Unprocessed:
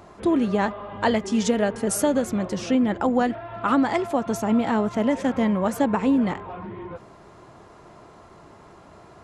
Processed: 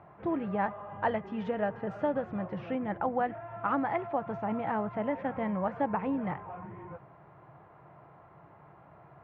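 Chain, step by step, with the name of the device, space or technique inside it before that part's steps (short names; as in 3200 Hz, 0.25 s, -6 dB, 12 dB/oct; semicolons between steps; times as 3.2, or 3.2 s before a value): bass cabinet (speaker cabinet 79–2300 Hz, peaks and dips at 140 Hz +10 dB, 240 Hz -9 dB, 390 Hz -6 dB, 790 Hz +4 dB); 0.75–2.48 notch 2200 Hz, Q 12; gain -7.5 dB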